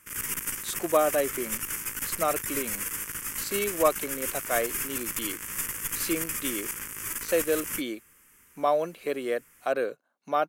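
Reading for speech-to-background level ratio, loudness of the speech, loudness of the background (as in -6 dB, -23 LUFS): 1.0 dB, -30.0 LUFS, -31.0 LUFS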